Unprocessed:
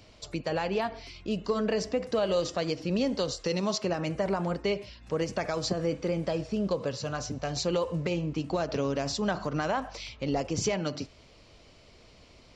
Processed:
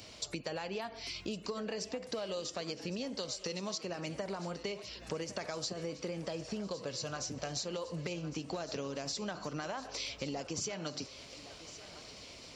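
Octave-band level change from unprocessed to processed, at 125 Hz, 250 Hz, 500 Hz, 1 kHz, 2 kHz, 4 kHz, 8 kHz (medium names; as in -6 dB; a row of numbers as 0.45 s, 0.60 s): -10.5 dB, -10.0 dB, -10.5 dB, -9.5 dB, -7.0 dB, -3.5 dB, -2.0 dB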